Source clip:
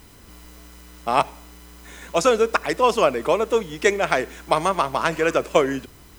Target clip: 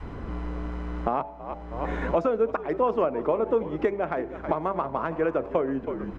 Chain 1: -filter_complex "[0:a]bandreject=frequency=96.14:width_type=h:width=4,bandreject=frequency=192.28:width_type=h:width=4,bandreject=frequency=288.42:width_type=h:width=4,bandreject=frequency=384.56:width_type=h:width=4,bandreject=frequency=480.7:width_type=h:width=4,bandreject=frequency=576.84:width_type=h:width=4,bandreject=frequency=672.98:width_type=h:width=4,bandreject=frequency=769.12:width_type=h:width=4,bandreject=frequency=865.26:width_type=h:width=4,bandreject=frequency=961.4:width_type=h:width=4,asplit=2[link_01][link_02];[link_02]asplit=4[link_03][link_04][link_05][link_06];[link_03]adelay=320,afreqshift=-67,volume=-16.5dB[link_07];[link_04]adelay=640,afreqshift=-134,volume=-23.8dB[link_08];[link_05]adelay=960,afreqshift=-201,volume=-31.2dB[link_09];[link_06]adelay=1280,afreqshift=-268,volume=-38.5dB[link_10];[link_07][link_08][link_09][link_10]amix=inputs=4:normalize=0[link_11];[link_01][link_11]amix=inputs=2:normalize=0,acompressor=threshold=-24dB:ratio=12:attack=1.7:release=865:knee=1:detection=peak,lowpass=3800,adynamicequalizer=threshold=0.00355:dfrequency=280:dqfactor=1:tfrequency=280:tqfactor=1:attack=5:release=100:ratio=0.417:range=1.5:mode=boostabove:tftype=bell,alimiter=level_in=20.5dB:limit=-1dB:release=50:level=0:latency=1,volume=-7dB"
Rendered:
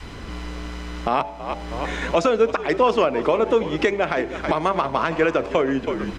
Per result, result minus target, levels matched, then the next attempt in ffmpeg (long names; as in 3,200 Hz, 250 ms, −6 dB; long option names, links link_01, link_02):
4,000 Hz band +13.5 dB; downward compressor: peak gain reduction −6 dB
-filter_complex "[0:a]bandreject=frequency=96.14:width_type=h:width=4,bandreject=frequency=192.28:width_type=h:width=4,bandreject=frequency=288.42:width_type=h:width=4,bandreject=frequency=384.56:width_type=h:width=4,bandreject=frequency=480.7:width_type=h:width=4,bandreject=frequency=576.84:width_type=h:width=4,bandreject=frequency=672.98:width_type=h:width=4,bandreject=frequency=769.12:width_type=h:width=4,bandreject=frequency=865.26:width_type=h:width=4,bandreject=frequency=961.4:width_type=h:width=4,asplit=2[link_01][link_02];[link_02]asplit=4[link_03][link_04][link_05][link_06];[link_03]adelay=320,afreqshift=-67,volume=-16.5dB[link_07];[link_04]adelay=640,afreqshift=-134,volume=-23.8dB[link_08];[link_05]adelay=960,afreqshift=-201,volume=-31.2dB[link_09];[link_06]adelay=1280,afreqshift=-268,volume=-38.5dB[link_10];[link_07][link_08][link_09][link_10]amix=inputs=4:normalize=0[link_11];[link_01][link_11]amix=inputs=2:normalize=0,acompressor=threshold=-24dB:ratio=12:attack=1.7:release=865:knee=1:detection=peak,lowpass=1200,adynamicequalizer=threshold=0.00355:dfrequency=280:dqfactor=1:tfrequency=280:tqfactor=1:attack=5:release=100:ratio=0.417:range=1.5:mode=boostabove:tftype=bell,alimiter=level_in=20.5dB:limit=-1dB:release=50:level=0:latency=1,volume=-7dB"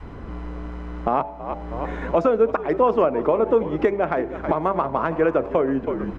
downward compressor: peak gain reduction −6 dB
-filter_complex "[0:a]bandreject=frequency=96.14:width_type=h:width=4,bandreject=frequency=192.28:width_type=h:width=4,bandreject=frequency=288.42:width_type=h:width=4,bandreject=frequency=384.56:width_type=h:width=4,bandreject=frequency=480.7:width_type=h:width=4,bandreject=frequency=576.84:width_type=h:width=4,bandreject=frequency=672.98:width_type=h:width=4,bandreject=frequency=769.12:width_type=h:width=4,bandreject=frequency=865.26:width_type=h:width=4,bandreject=frequency=961.4:width_type=h:width=4,asplit=2[link_01][link_02];[link_02]asplit=4[link_03][link_04][link_05][link_06];[link_03]adelay=320,afreqshift=-67,volume=-16.5dB[link_07];[link_04]adelay=640,afreqshift=-134,volume=-23.8dB[link_08];[link_05]adelay=960,afreqshift=-201,volume=-31.2dB[link_09];[link_06]adelay=1280,afreqshift=-268,volume=-38.5dB[link_10];[link_07][link_08][link_09][link_10]amix=inputs=4:normalize=0[link_11];[link_01][link_11]amix=inputs=2:normalize=0,acompressor=threshold=-30.5dB:ratio=12:attack=1.7:release=865:knee=1:detection=peak,lowpass=1200,adynamicequalizer=threshold=0.00355:dfrequency=280:dqfactor=1:tfrequency=280:tqfactor=1:attack=5:release=100:ratio=0.417:range=1.5:mode=boostabove:tftype=bell,alimiter=level_in=20.5dB:limit=-1dB:release=50:level=0:latency=1,volume=-7dB"